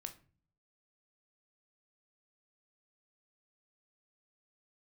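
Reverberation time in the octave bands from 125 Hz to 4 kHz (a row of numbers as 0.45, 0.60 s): 0.85, 0.70, 0.45, 0.35, 0.35, 0.25 s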